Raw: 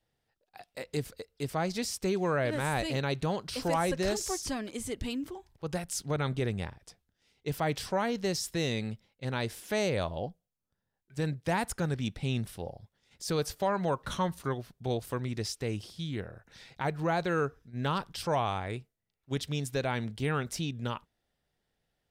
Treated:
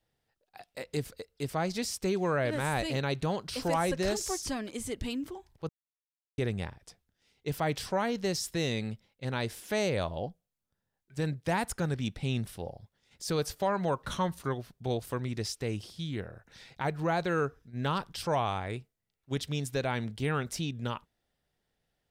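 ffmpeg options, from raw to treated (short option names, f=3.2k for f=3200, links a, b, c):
-filter_complex "[0:a]asplit=3[a][b][c];[a]atrim=end=5.69,asetpts=PTS-STARTPTS,afade=t=out:st=5.686:d=0.004:c=hsin[d];[b]atrim=start=5.69:end=6.38,asetpts=PTS-STARTPTS,volume=0[e];[c]atrim=start=6.38,asetpts=PTS-STARTPTS,afade=t=in:d=0.004:c=hsin[f];[d][e][f]concat=n=3:v=0:a=1"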